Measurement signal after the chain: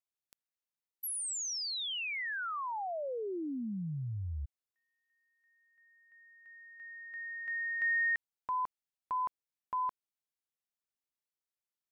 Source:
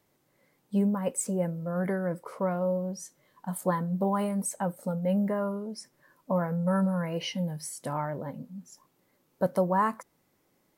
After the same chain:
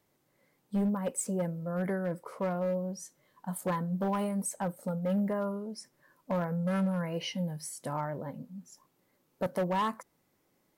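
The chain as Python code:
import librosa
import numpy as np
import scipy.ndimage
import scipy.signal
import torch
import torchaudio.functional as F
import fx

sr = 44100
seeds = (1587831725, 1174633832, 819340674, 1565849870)

y = np.clip(x, -10.0 ** (-22.5 / 20.0), 10.0 ** (-22.5 / 20.0))
y = F.gain(torch.from_numpy(y), -2.5).numpy()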